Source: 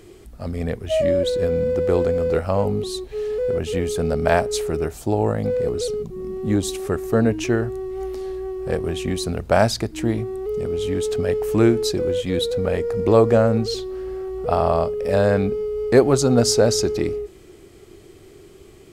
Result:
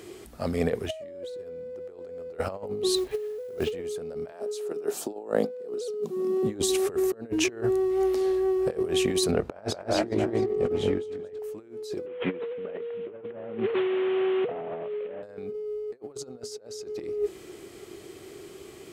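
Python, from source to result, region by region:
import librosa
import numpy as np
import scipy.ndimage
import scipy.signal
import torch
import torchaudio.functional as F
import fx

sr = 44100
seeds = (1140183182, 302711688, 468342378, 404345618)

y = fx.chain(x, sr, fx.lowpass(hz=3200.0, slope=12),
    fx.quant_companded(bits=6), at=(2.95, 3.72))
y = fx.chain(y, sr, fx.highpass(hz=190.0, slope=24),
    fx.peak_eq(hz=2100.0, db=-6.5, octaves=0.37), at=(4.32, 6.43))
y = fx.chain(y, sr, fx.lowpass(hz=1700.0, slope=6),
    fx.doubler(ms=20.0, db=-9.0),
    fx.echo_multitap(ms=(225, 382, 675), db=(-3.0, -15.0, -19.0)), at=(9.31, 11.39))
y = fx.chain(y, sr, fx.delta_mod(bps=16000, step_db=-31.5),
    fx.highpass(hz=130.0, slope=24), at=(12.06, 15.23))
y = fx.highpass(y, sr, hz=280.0, slope=6)
y = fx.dynamic_eq(y, sr, hz=430.0, q=2.1, threshold_db=-34.0, ratio=4.0, max_db=6)
y = fx.over_compress(y, sr, threshold_db=-26.0, ratio=-0.5)
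y = y * 10.0 ** (-3.0 / 20.0)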